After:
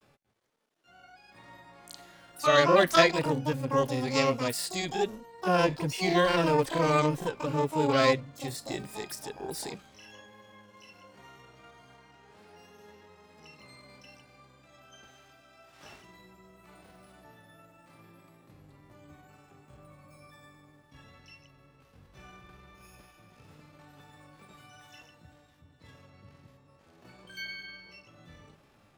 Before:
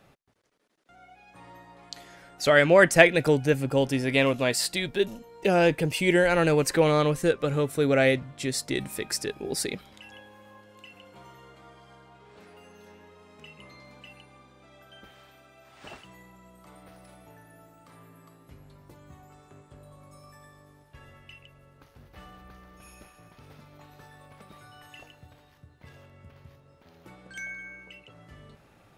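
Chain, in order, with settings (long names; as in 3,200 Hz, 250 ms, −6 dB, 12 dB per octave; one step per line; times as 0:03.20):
granular cloud 100 ms, spray 20 ms, pitch spread up and down by 0 semitones
pitch-shifted copies added +12 semitones −4 dB
harmonic and percussive parts rebalanced harmonic +7 dB
level −9 dB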